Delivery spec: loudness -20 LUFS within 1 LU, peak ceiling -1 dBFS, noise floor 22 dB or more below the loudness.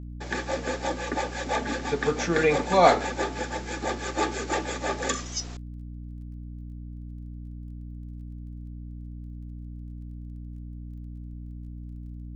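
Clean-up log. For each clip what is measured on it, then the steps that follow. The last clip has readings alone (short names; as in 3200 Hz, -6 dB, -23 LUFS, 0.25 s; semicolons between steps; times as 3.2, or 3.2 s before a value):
ticks 17/s; hum 60 Hz; harmonics up to 300 Hz; hum level -36 dBFS; loudness -27.0 LUFS; peak -5.0 dBFS; loudness target -20.0 LUFS
-> de-click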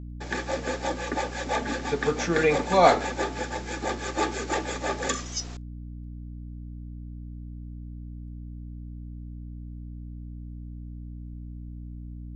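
ticks 0/s; hum 60 Hz; harmonics up to 300 Hz; hum level -36 dBFS
-> de-hum 60 Hz, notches 5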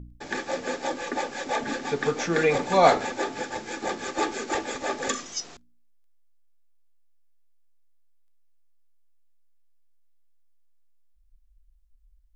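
hum none; loudness -27.0 LUFS; peak -5.0 dBFS; loudness target -20.0 LUFS
-> gain +7 dB; limiter -1 dBFS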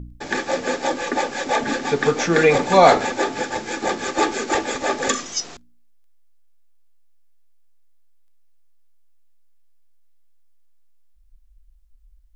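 loudness -20.5 LUFS; peak -1.0 dBFS; noise floor -52 dBFS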